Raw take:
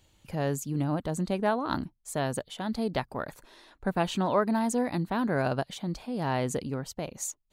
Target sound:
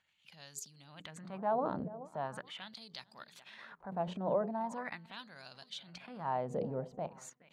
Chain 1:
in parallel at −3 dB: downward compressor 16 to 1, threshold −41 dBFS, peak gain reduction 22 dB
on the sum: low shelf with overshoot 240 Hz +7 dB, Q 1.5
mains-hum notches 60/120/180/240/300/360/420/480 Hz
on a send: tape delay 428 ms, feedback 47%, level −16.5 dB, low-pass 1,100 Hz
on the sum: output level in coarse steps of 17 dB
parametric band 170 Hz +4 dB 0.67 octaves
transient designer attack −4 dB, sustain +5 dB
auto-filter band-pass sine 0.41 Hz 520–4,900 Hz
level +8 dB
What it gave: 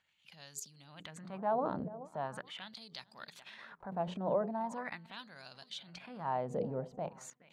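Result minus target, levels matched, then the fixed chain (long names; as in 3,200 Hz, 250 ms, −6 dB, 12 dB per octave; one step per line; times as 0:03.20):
downward compressor: peak gain reduction −7 dB
in parallel at −3 dB: downward compressor 16 to 1, threshold −48.5 dBFS, peak gain reduction 29 dB
on the sum: low shelf with overshoot 240 Hz +7 dB, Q 1.5
mains-hum notches 60/120/180/240/300/360/420/480 Hz
on a send: tape delay 428 ms, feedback 47%, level −16.5 dB, low-pass 1,100 Hz
on the sum: output level in coarse steps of 17 dB
parametric band 170 Hz +4 dB 0.67 octaves
transient designer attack −4 dB, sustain +5 dB
auto-filter band-pass sine 0.41 Hz 520–4,900 Hz
level +8 dB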